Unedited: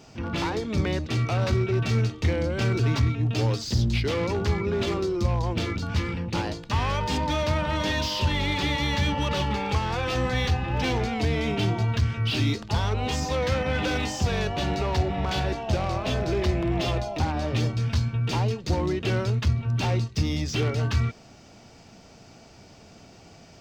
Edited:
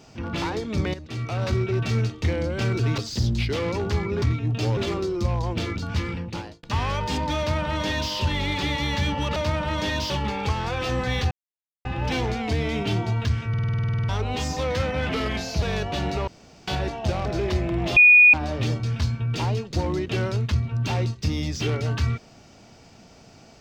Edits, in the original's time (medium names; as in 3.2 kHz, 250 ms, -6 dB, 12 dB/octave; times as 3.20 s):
0.94–1.55 s: fade in, from -12.5 dB
2.98–3.53 s: move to 4.77 s
6.16–6.63 s: fade out
7.38–8.12 s: copy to 9.36 s
10.57 s: insert silence 0.54 s
12.21 s: stutter in place 0.05 s, 12 plays
13.81–14.27 s: speed 86%
14.92–15.32 s: room tone
15.90–16.19 s: delete
16.90–17.27 s: bleep 2.46 kHz -9 dBFS